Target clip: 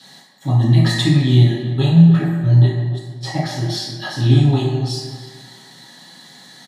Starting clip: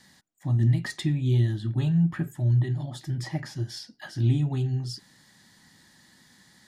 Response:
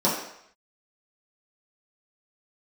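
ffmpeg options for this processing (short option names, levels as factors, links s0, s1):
-filter_complex "[0:a]highpass=f=910:p=1,asettb=1/sr,asplit=3[s0][s1][s2];[s0]atrim=end=1.444[s3];[s1]atrim=start=1.44:end=3.44,asetpts=PTS-STARTPTS,afade=t=in:d=0.004:c=qsin,afade=t=out:st=1.996:d=0.004:c=qsin,agate=range=0.112:threshold=0.01:ratio=16:detection=peak[s4];[s2]atrim=start=3.436[s5];[s3][s4]acrossfade=d=0.004:c1=hsin:c2=qsin[s6];[s6][s5]acrossfade=d=0.004:c1=qsin:c2=hsin,asplit=2[s7][s8];[s8]adelay=301,lowpass=f=1700:p=1,volume=0.282,asplit=2[s9][s10];[s10]adelay=301,lowpass=f=1700:p=1,volume=0.27,asplit=2[s11][s12];[s12]adelay=301,lowpass=f=1700:p=1,volume=0.27[s13];[s7][s9][s11][s13]amix=inputs=4:normalize=0[s14];[1:a]atrim=start_sample=2205,asetrate=32193,aresample=44100[s15];[s14][s15]afir=irnorm=-1:irlink=0,volume=1.19"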